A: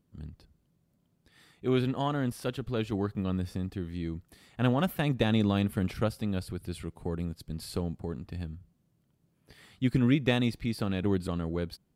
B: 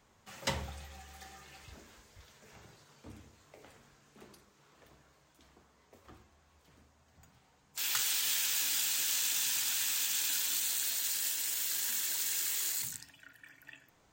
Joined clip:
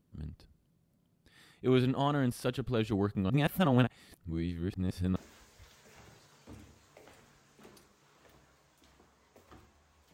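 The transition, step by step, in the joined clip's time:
A
3.3–5.16 reverse
5.16 switch to B from 1.73 s

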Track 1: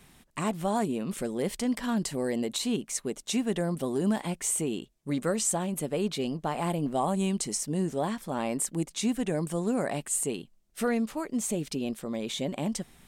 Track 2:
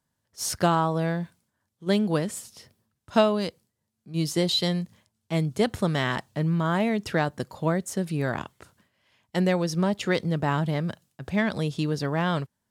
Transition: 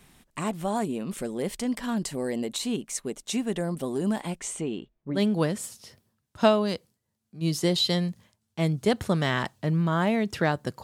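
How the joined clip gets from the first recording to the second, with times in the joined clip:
track 1
4.38–5.23 LPF 8600 Hz -> 1000 Hz
5.17 switch to track 2 from 1.9 s, crossfade 0.12 s

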